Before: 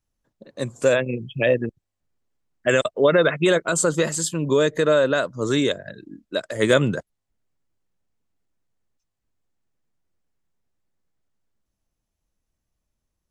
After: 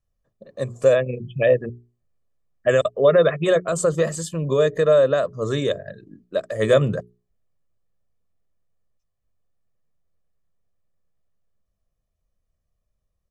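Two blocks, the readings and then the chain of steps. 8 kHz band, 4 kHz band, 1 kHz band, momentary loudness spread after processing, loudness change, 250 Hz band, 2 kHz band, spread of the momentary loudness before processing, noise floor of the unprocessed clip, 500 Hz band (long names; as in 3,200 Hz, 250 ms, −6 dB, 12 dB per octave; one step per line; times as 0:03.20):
−6.5 dB, −5.0 dB, −1.0 dB, 12 LU, +0.5 dB, −4.0 dB, −4.5 dB, 12 LU, −81 dBFS, +2.0 dB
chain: tilt shelving filter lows +4.5 dB, about 1,300 Hz
mains-hum notches 60/120/180/240/300/360/420 Hz
comb filter 1.7 ms, depth 57%
level −3.5 dB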